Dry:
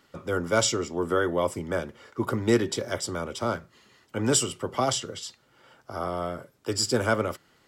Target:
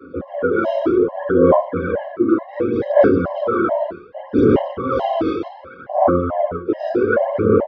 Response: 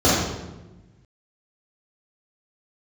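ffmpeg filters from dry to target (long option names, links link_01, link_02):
-filter_complex "[0:a]acrossover=split=120|4200[link_01][link_02][link_03];[link_03]acrusher=samples=35:mix=1:aa=0.000001:lfo=1:lforange=21:lforate=0.35[link_04];[link_01][link_02][link_04]amix=inputs=3:normalize=0,aresample=22050,aresample=44100[link_05];[1:a]atrim=start_sample=2205,afade=type=out:start_time=0.45:duration=0.01,atrim=end_sample=20286[link_06];[link_05][link_06]afir=irnorm=-1:irlink=0,areverse,acompressor=threshold=-8dB:ratio=8,areverse,equalizer=frequency=7800:width=3.2:gain=-11,aphaser=in_gain=1:out_gain=1:delay=3.2:decay=0.6:speed=0.66:type=sinusoidal,acrossover=split=250 2700:gain=0.141 1 0.0794[link_07][link_08][link_09];[link_07][link_08][link_09]amix=inputs=3:normalize=0,afftfilt=real='re*gt(sin(2*PI*2.3*pts/sr)*(1-2*mod(floor(b*sr/1024/540),2)),0)':imag='im*gt(sin(2*PI*2.3*pts/sr)*(1-2*mod(floor(b*sr/1024/540),2)),0)':win_size=1024:overlap=0.75,volume=-3dB"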